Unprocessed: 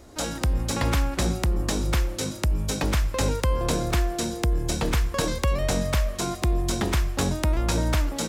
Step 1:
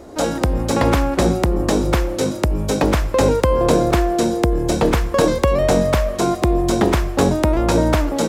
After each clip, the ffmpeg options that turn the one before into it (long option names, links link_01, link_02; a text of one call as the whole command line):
ffmpeg -i in.wav -af "equalizer=frequency=470:width=0.41:gain=11.5,volume=2dB" out.wav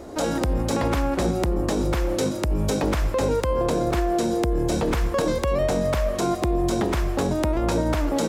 ffmpeg -i in.wav -af "alimiter=limit=-14dB:level=0:latency=1:release=135" out.wav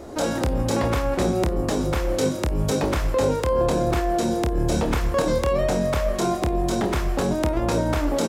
ffmpeg -i in.wav -af "aecho=1:1:27|52:0.473|0.133" out.wav